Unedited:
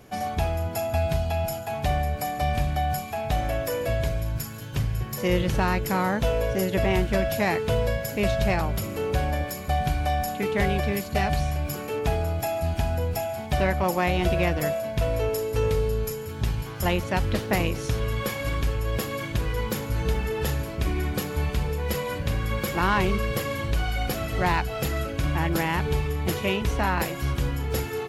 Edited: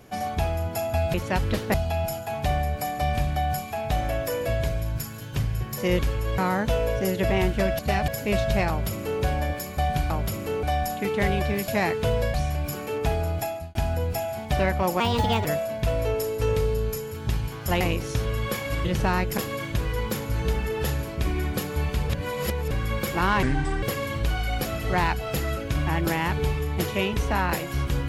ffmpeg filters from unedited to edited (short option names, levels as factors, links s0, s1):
-filter_complex "[0:a]asplit=21[s0][s1][s2][s3][s4][s5][s6][s7][s8][s9][s10][s11][s12][s13][s14][s15][s16][s17][s18][s19][s20];[s0]atrim=end=1.142[s21];[s1]atrim=start=16.948:end=17.552[s22];[s2]atrim=start=1.138:end=5.392[s23];[s3]atrim=start=18.588:end=18.982[s24];[s4]atrim=start=5.918:end=7.332[s25];[s5]atrim=start=11.058:end=11.352[s26];[s6]atrim=start=7.988:end=10.012[s27];[s7]atrim=start=8.598:end=9.132[s28];[s8]atrim=start=10.008:end=11.062[s29];[s9]atrim=start=7.328:end=7.992[s30];[s10]atrim=start=11.348:end=12.76,asetpts=PTS-STARTPTS,afade=t=out:st=1.062:d=0.35[s31];[s11]atrim=start=12.76:end=14.014,asetpts=PTS-STARTPTS,afade=t=in:d=0.004:c=hsin[s32];[s12]atrim=start=14.01:end=14.59,asetpts=PTS-STARTPTS,asetrate=57330,aresample=44100,atrim=end_sample=19675,asetpts=PTS-STARTPTS[s33];[s13]atrim=start=14.586:end=16.952[s34];[s14]atrim=start=17.548:end=18.592[s35];[s15]atrim=start=5.388:end=5.922[s36];[s16]atrim=start=18.978:end=21.702[s37];[s17]atrim=start=21.698:end=22.312,asetpts=PTS-STARTPTS,areverse[s38];[s18]atrim=start=22.308:end=23.034[s39];[s19]atrim=start=23.03:end=23.31,asetpts=PTS-STARTPTS,asetrate=30870,aresample=44100[s40];[s20]atrim=start=23.306[s41];[s21][s22]acrossfade=d=0.004:c1=hsin:c2=hsin[s42];[s42][s23]acrossfade=d=0.004:c1=hsin:c2=hsin[s43];[s43][s24]acrossfade=d=0.004:c1=hsin:c2=hsin[s44];[s44][s25]acrossfade=d=0.004:c1=hsin:c2=hsin[s45];[s45][s26]acrossfade=d=0.004:c1=hsin:c2=hsin[s46];[s46][s27]acrossfade=d=0.004:c1=hsin:c2=hsin[s47];[s47][s28]acrossfade=d=0.004:c1=hsin:c2=hsin[s48];[s48][s29]acrossfade=d=0.004:c1=hsin:c2=hsin[s49];[s49][s30]acrossfade=d=0.004:c1=hsin:c2=hsin[s50];[s31][s32]concat=n=2:v=0:a=1[s51];[s50][s51]acrossfade=d=0.004:c1=hsin:c2=hsin[s52];[s52][s33]acrossfade=d=0.004:c1=hsin:c2=hsin[s53];[s53][s34]acrossfade=d=0.004:c1=hsin:c2=hsin[s54];[s54][s35]acrossfade=d=0.004:c1=hsin:c2=hsin[s55];[s55][s36]acrossfade=d=0.004:c1=hsin:c2=hsin[s56];[s56][s37]acrossfade=d=0.004:c1=hsin:c2=hsin[s57];[s57][s38]acrossfade=d=0.004:c1=hsin:c2=hsin[s58];[s58][s39]acrossfade=d=0.004:c1=hsin:c2=hsin[s59];[s59][s40]acrossfade=d=0.004:c1=hsin:c2=hsin[s60];[s60][s41]acrossfade=d=0.004:c1=hsin:c2=hsin"